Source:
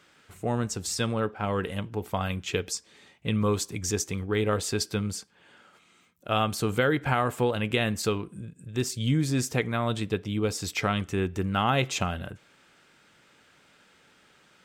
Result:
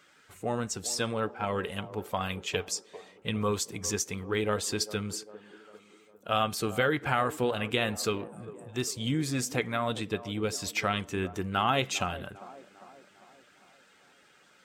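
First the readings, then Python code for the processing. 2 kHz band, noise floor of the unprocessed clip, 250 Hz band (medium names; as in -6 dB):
-1.0 dB, -61 dBFS, -4.5 dB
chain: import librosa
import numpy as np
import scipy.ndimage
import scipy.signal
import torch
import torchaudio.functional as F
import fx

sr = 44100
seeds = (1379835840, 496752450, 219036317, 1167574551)

y = fx.spec_quant(x, sr, step_db=15)
y = fx.low_shelf(y, sr, hz=290.0, db=-7.5)
y = fx.echo_wet_bandpass(y, sr, ms=400, feedback_pct=52, hz=510.0, wet_db=-14.0)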